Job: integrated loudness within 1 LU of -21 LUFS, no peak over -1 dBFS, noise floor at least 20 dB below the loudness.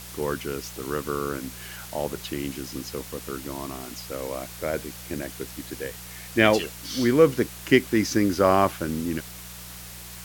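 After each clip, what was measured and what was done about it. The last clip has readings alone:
hum 60 Hz; highest harmonic 180 Hz; hum level -43 dBFS; noise floor -41 dBFS; noise floor target -46 dBFS; loudness -26.0 LUFS; peak level -3.0 dBFS; loudness target -21.0 LUFS
-> de-hum 60 Hz, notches 3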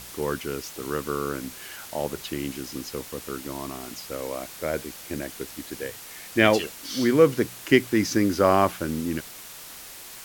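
hum not found; noise floor -42 dBFS; noise floor target -46 dBFS
-> noise print and reduce 6 dB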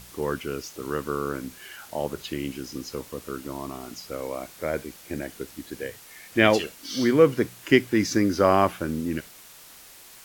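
noise floor -48 dBFS; loudness -26.0 LUFS; peak level -3.0 dBFS; loudness target -21.0 LUFS
-> trim +5 dB; peak limiter -1 dBFS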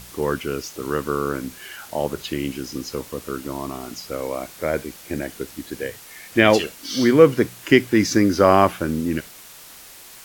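loudness -21.5 LUFS; peak level -1.0 dBFS; noise floor -43 dBFS

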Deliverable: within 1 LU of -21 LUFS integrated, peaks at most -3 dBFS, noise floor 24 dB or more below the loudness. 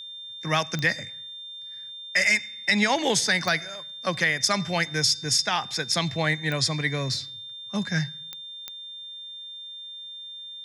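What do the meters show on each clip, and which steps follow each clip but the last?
clicks found 5; steady tone 3.6 kHz; tone level -37 dBFS; loudness -24.5 LUFS; peak level -8.5 dBFS; loudness target -21.0 LUFS
-> de-click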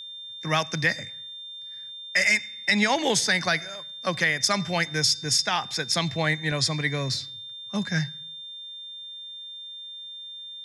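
clicks found 0; steady tone 3.6 kHz; tone level -37 dBFS
-> band-stop 3.6 kHz, Q 30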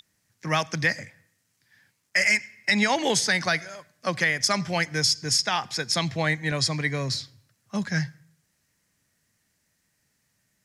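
steady tone not found; loudness -24.5 LUFS; peak level -8.5 dBFS; loudness target -21.0 LUFS
-> trim +3.5 dB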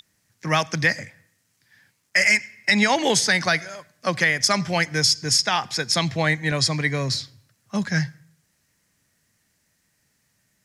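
loudness -21.0 LUFS; peak level -5.0 dBFS; noise floor -69 dBFS

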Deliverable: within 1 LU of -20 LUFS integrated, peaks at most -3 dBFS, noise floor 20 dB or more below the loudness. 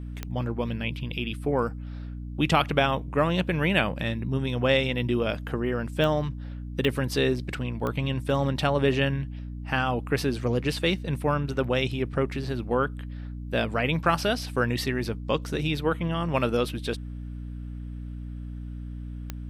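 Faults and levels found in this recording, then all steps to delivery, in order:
clicks found 5; hum 60 Hz; highest harmonic 300 Hz; hum level -33 dBFS; loudness -27.0 LUFS; peak level -7.5 dBFS; loudness target -20.0 LUFS
-> de-click; de-hum 60 Hz, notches 5; trim +7 dB; peak limiter -3 dBFS

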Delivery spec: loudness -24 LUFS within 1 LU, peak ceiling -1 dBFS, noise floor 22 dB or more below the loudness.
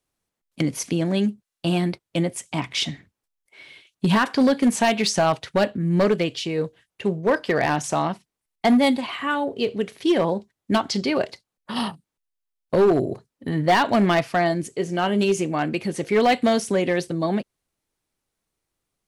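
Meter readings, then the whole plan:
clipped samples 0.9%; clipping level -12.5 dBFS; loudness -22.5 LUFS; peak level -12.5 dBFS; loudness target -24.0 LUFS
-> clip repair -12.5 dBFS; trim -1.5 dB

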